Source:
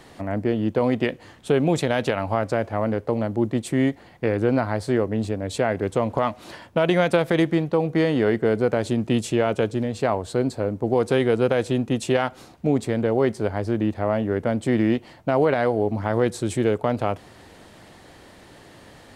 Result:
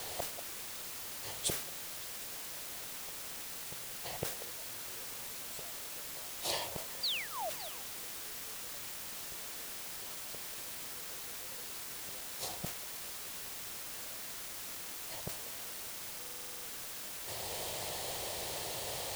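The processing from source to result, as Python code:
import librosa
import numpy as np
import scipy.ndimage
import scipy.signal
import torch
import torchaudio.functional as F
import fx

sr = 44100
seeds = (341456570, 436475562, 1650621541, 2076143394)

p1 = fx.dynamic_eq(x, sr, hz=180.0, q=1.0, threshold_db=-34.0, ratio=4.0, max_db=4)
p2 = 10.0 ** (-18.0 / 20.0) * np.tanh(p1 / 10.0 ** (-18.0 / 20.0))
p3 = p1 + (p2 * librosa.db_to_amplitude(-6.0))
p4 = fx.gate_flip(p3, sr, shuts_db=-17.0, range_db=-42)
p5 = fx.spec_paint(p4, sr, seeds[0], shape='fall', start_s=7.03, length_s=0.47, low_hz=580.0, high_hz=4900.0, level_db=-37.0)
p6 = fx.rider(p5, sr, range_db=3, speed_s=0.5)
p7 = fx.tilt_eq(p6, sr, slope=2.0)
p8 = fx.fixed_phaser(p7, sr, hz=620.0, stages=4)
p9 = fx.quant_dither(p8, sr, seeds[1], bits=8, dither='triangular')
p10 = p9 + fx.echo_stepped(p9, sr, ms=188, hz=570.0, octaves=1.4, feedback_pct=70, wet_db=-9.5, dry=0)
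p11 = fx.buffer_glitch(p10, sr, at_s=(16.18,), block=2048, repeats=9)
p12 = fx.sustainer(p11, sr, db_per_s=78.0)
y = p12 * librosa.db_to_amplitude(4.0)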